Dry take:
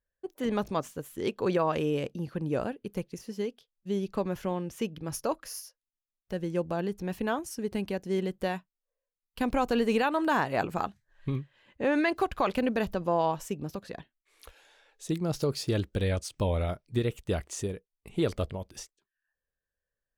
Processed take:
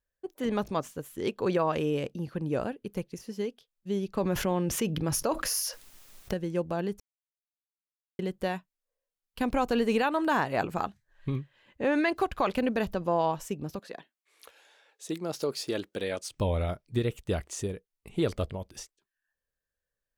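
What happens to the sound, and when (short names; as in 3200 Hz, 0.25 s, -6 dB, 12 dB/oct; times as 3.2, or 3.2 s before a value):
4.17–6.34 fast leveller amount 70%
7–8.19 mute
13.79–16.29 HPF 290 Hz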